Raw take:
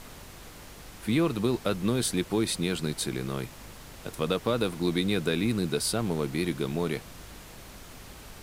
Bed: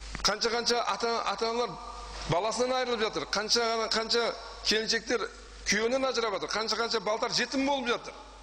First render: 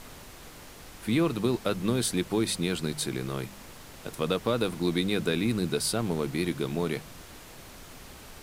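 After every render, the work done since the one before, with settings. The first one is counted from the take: de-hum 50 Hz, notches 4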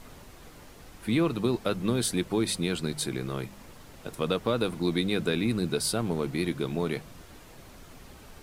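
denoiser 6 dB, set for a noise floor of -48 dBFS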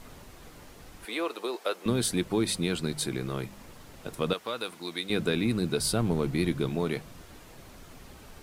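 1.05–1.86 HPF 420 Hz 24 dB/oct; 4.33–5.1 HPF 1200 Hz 6 dB/oct; 5.78–6.7 low shelf 130 Hz +8.5 dB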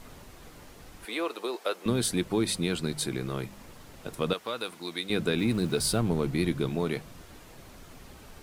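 5.38–6 zero-crossing step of -41 dBFS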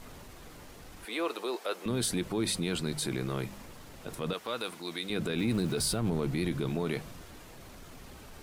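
limiter -20 dBFS, peak gain reduction 8 dB; transient shaper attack -4 dB, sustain +2 dB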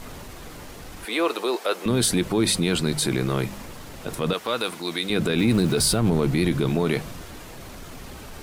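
gain +9.5 dB

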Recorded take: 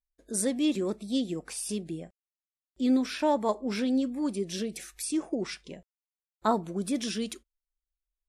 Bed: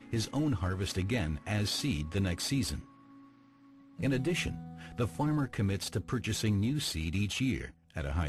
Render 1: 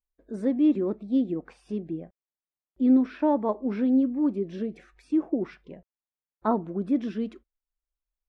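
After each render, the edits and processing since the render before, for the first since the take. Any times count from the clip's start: LPF 1500 Hz 12 dB/oct; dynamic EQ 290 Hz, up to +6 dB, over -40 dBFS, Q 1.8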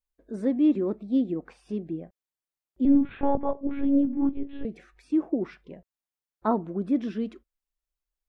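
2.85–4.65 monotone LPC vocoder at 8 kHz 280 Hz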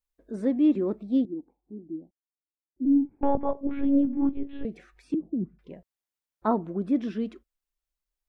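1.25–3.23 vocal tract filter u; 5.14–5.59 synth low-pass 190 Hz, resonance Q 2.1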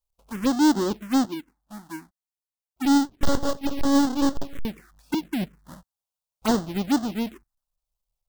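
half-waves squared off; envelope phaser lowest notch 300 Hz, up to 2400 Hz, full sweep at -19.5 dBFS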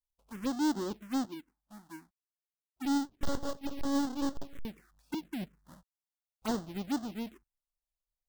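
gain -11 dB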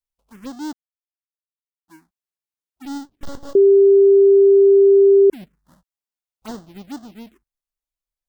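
0.73–1.88 mute; 3.55–5.3 bleep 395 Hz -7.5 dBFS

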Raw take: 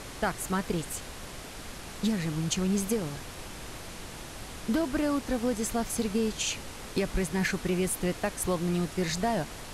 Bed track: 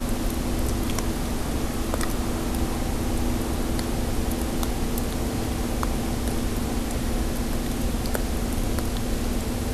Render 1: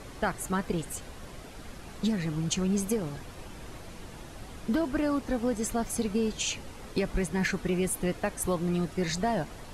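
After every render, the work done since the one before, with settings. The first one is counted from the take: denoiser 8 dB, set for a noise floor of -43 dBFS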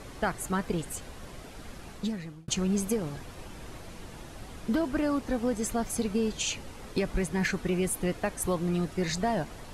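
1.85–2.48 fade out linear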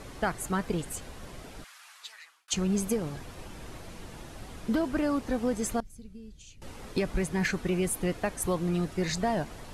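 1.64–2.53 HPF 1100 Hz 24 dB/oct; 5.8–6.62 passive tone stack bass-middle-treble 10-0-1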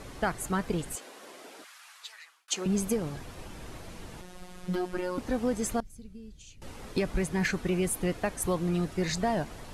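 0.95–2.66 HPF 290 Hz 24 dB/oct; 4.21–5.18 robotiser 181 Hz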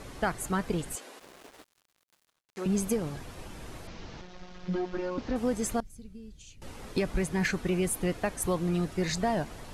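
1.19–2.57 switching dead time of 0.29 ms; 3.87–5.36 delta modulation 32 kbps, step -47.5 dBFS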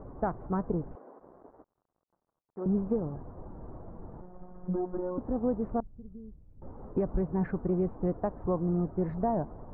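Wiener smoothing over 15 samples; LPF 1100 Hz 24 dB/oct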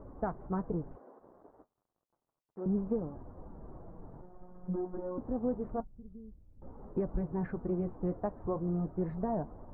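flange 0.31 Hz, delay 3.1 ms, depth 7.4 ms, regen -59%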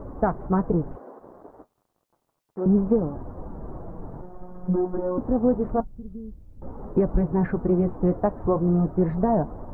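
gain +12 dB

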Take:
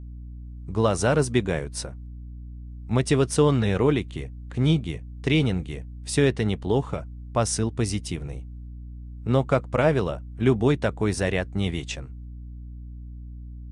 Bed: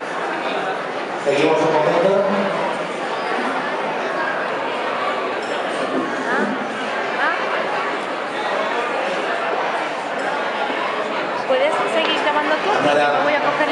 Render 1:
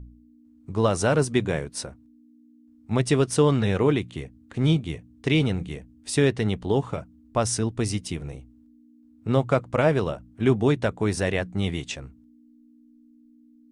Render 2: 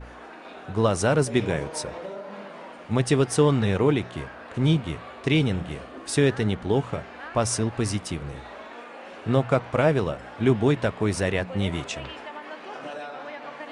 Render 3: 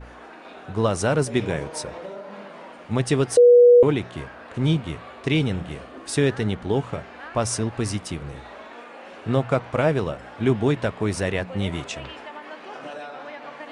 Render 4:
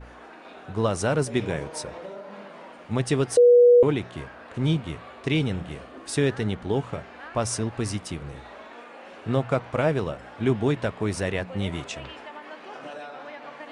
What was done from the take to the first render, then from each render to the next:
de-hum 60 Hz, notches 3
add bed -20.5 dB
3.37–3.83 bleep 485 Hz -8 dBFS
gain -2.5 dB

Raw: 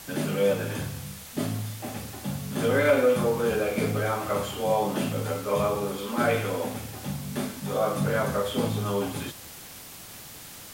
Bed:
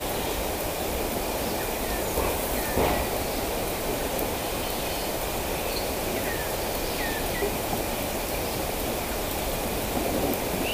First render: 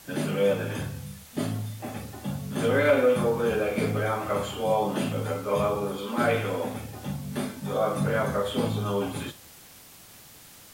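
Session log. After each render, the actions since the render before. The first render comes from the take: noise print and reduce 6 dB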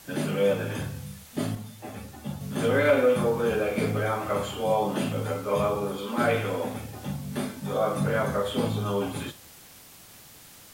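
1.55–2.41 ensemble effect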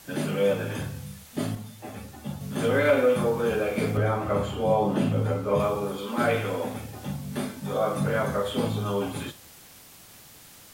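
3.97–5.6 tilt -2 dB/oct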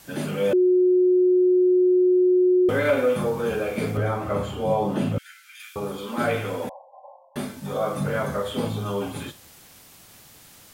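0.53–2.69 bleep 364 Hz -14.5 dBFS; 5.18–5.76 steep high-pass 1500 Hz 96 dB/oct; 6.69–7.36 brick-wall FIR band-pass 510–1100 Hz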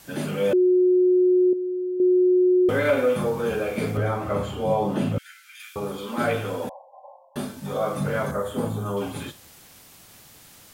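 1.53–2 gain -9.5 dB; 6.33–7.59 bell 2100 Hz -8.5 dB 0.27 oct; 8.31–8.97 band shelf 3400 Hz -9 dB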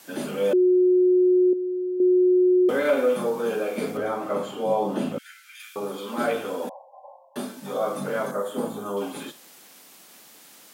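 HPF 210 Hz 24 dB/oct; dynamic EQ 2100 Hz, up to -4 dB, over -43 dBFS, Q 1.4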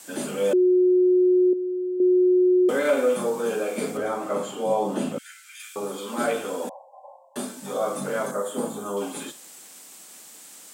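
HPF 120 Hz; bell 7900 Hz +11 dB 0.6 oct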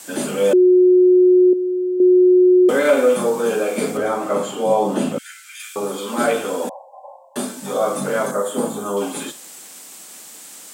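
gain +6.5 dB

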